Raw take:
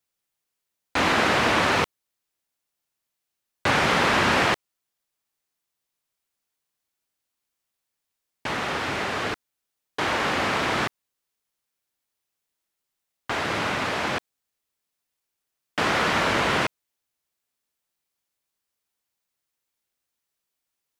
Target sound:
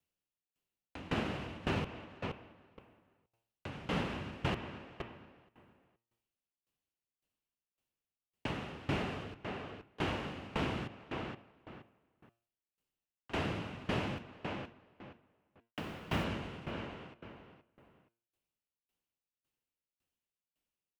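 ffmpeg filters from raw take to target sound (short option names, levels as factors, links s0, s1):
-filter_complex "[0:a]bandreject=f=115.7:t=h:w=4,bandreject=f=231.4:t=h:w=4,bandreject=f=347.1:t=h:w=4,bandreject=f=462.8:t=h:w=4,bandreject=f=578.5:t=h:w=4,bandreject=f=694.2:t=h:w=4,bandreject=f=809.9:t=h:w=4,bandreject=f=925.6:t=h:w=4,bandreject=f=1041.3:t=h:w=4,bandreject=f=1157:t=h:w=4,bandreject=f=1272.7:t=h:w=4,bandreject=f=1388.4:t=h:w=4,bandreject=f=1504.1:t=h:w=4,bandreject=f=1619.8:t=h:w=4,bandreject=f=1735.5:t=h:w=4,bandreject=f=1851.2:t=h:w=4,bandreject=f=1966.9:t=h:w=4,bandreject=f=2082.6:t=h:w=4,bandreject=f=2198.3:t=h:w=4,bandreject=f=2314:t=h:w=4,bandreject=f=2429.7:t=h:w=4,bandreject=f=2545.4:t=h:w=4,bandreject=f=2661.1:t=h:w=4,bandreject=f=2776.8:t=h:w=4,bandreject=f=2892.5:t=h:w=4,bandreject=f=3008.2:t=h:w=4,bandreject=f=3123.9:t=h:w=4,bandreject=f=3239.6:t=h:w=4,bandreject=f=3355.3:t=h:w=4,bandreject=f=3471:t=h:w=4,bandreject=f=3586.7:t=h:w=4,bandreject=f=3702.4:t=h:w=4,alimiter=limit=0.141:level=0:latency=1:release=199,tiltshelf=f=700:g=7,asplit=3[s0][s1][s2];[s0]afade=t=out:st=14.17:d=0.02[s3];[s1]acrusher=bits=6:mix=0:aa=0.5,afade=t=in:st=14.17:d=0.02,afade=t=out:st=16.23:d=0.02[s4];[s2]afade=t=in:st=16.23:d=0.02[s5];[s3][s4][s5]amix=inputs=3:normalize=0,equalizer=f=2800:t=o:w=0.43:g=9.5,asplit=2[s6][s7];[s7]adelay=472,lowpass=f=3200:p=1,volume=0.355,asplit=2[s8][s9];[s9]adelay=472,lowpass=f=3200:p=1,volume=0.26,asplit=2[s10][s11];[s11]adelay=472,lowpass=f=3200:p=1,volume=0.26[s12];[s6][s8][s10][s12]amix=inputs=4:normalize=0,acrossover=split=230[s13][s14];[s14]acompressor=threshold=0.0316:ratio=5[s15];[s13][s15]amix=inputs=2:normalize=0,aeval=exprs='val(0)*pow(10,-21*if(lt(mod(1.8*n/s,1),2*abs(1.8)/1000),1-mod(1.8*n/s,1)/(2*abs(1.8)/1000),(mod(1.8*n/s,1)-2*abs(1.8)/1000)/(1-2*abs(1.8)/1000))/20)':c=same,volume=0.891"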